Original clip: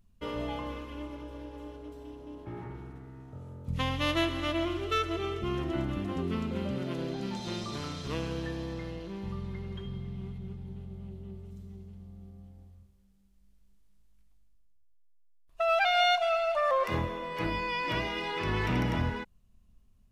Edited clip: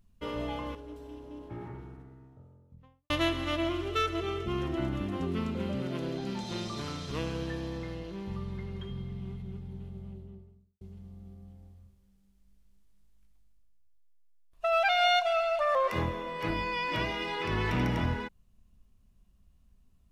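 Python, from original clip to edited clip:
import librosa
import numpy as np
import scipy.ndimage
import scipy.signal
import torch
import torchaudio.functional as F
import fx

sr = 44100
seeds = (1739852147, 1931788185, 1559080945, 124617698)

y = fx.studio_fade_out(x, sr, start_s=2.32, length_s=1.74)
y = fx.studio_fade_out(y, sr, start_s=10.91, length_s=0.86)
y = fx.edit(y, sr, fx.cut(start_s=0.75, length_s=0.96), tone=tone)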